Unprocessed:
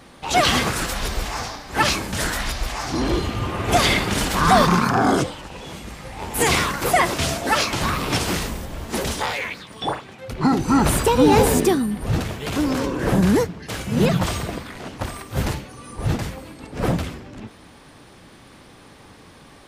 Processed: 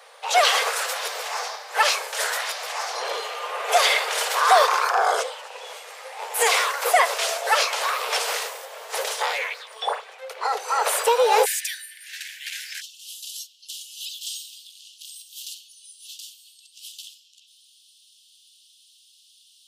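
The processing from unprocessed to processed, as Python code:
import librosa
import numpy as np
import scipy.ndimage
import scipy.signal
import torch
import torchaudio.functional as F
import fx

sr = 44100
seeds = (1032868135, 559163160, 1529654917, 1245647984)

y = fx.steep_highpass(x, sr, hz=fx.steps((0.0, 440.0), (11.44, 1600.0), (12.8, 2900.0)), slope=96)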